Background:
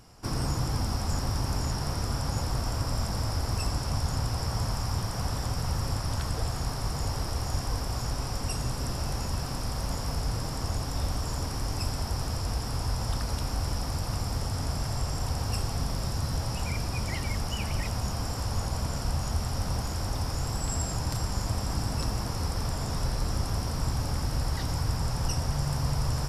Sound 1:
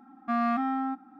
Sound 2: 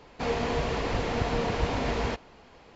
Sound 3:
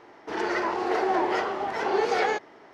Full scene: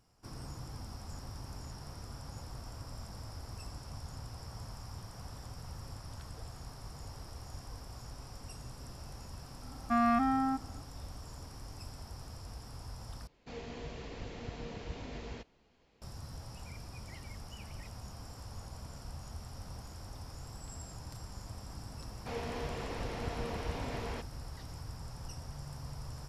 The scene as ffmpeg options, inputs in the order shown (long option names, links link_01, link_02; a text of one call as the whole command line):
ffmpeg -i bed.wav -i cue0.wav -i cue1.wav -filter_complex "[2:a]asplit=2[link_01][link_02];[0:a]volume=-16dB[link_03];[link_01]equalizer=frequency=1000:width_type=o:width=2.2:gain=-7[link_04];[link_03]asplit=2[link_05][link_06];[link_05]atrim=end=13.274[link_07];[link_04]atrim=end=2.75,asetpts=PTS-STARTPTS,volume=-13dB[link_08];[link_06]atrim=start=16.016[link_09];[1:a]atrim=end=1.19,asetpts=PTS-STARTPTS,volume=-1dB,afade=type=in:duration=0.004:curve=hsin,afade=type=out:start_time=1.186:duration=0.004:curve=hsin,adelay=424242S[link_10];[link_02]atrim=end=2.75,asetpts=PTS-STARTPTS,volume=-11dB,afade=type=in:duration=0.004:curve=hsin,afade=type=out:start_time=2.746:duration=0.004:curve=hsin,adelay=22060[link_11];[link_07][link_08]acrossfade=duration=0.004:curve1=hsin:curve2=hsin[link_12];[link_12][link_09]acrossfade=duration=0.004:curve1=hsin:curve2=hsin[link_13];[link_13][link_10][link_11]amix=inputs=3:normalize=0" out.wav